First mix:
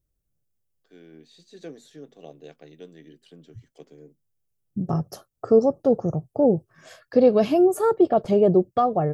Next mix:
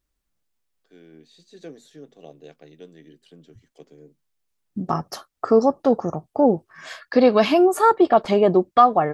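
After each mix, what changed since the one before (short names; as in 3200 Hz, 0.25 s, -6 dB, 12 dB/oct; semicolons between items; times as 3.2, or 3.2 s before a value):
second voice: add graphic EQ 125/250/500/1000/2000/4000/8000 Hz -11/+5/-3/+11/+10/+9/+3 dB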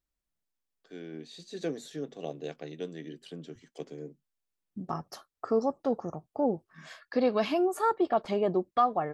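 first voice +6.0 dB; second voice -11.0 dB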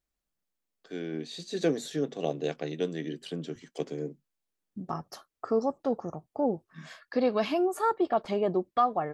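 first voice +7.0 dB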